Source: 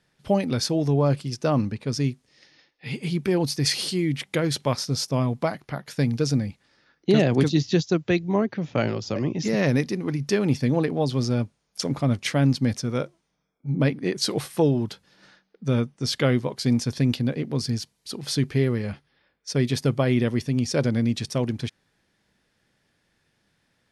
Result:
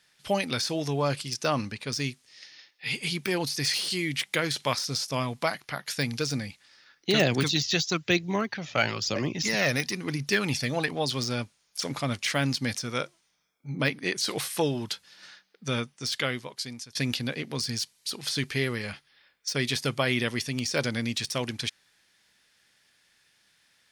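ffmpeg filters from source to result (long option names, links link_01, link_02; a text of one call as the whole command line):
ffmpeg -i in.wav -filter_complex "[0:a]asettb=1/sr,asplit=3[link_01][link_02][link_03];[link_01]atrim=end=7.204[link_04];[link_02]atrim=start=7.2:end=10.95,asetpts=PTS-STARTPTS,afade=type=in:duration=0.004:curve=qsin,afade=type=out:start_time=3.746:duration=0.004:curve=qsin,aphaser=in_gain=1:out_gain=1:delay=1.7:decay=0.4:speed=1:type=triangular[link_05];[link_03]atrim=start=10.946[link_06];[link_04][link_05]acrossfade=duration=0.004:curve1=hsin:curve2=qsin[link_07];[link_07][link_06]acrossfade=duration=0.004:curve1=qsin:curve2=hsin,asplit=2[link_08][link_09];[link_08]atrim=end=16.95,asetpts=PTS-STARTPTS,afade=type=out:start_time=15.69:duration=1.26:silence=0.0707946[link_10];[link_09]atrim=start=16.95,asetpts=PTS-STARTPTS,afade=type=in:duration=0.004:curve=hsin:silence=0.0707946[link_11];[link_10][link_11]concat=n=2:v=0:a=1,deesser=0.8,tiltshelf=frequency=970:gain=-9.5" out.wav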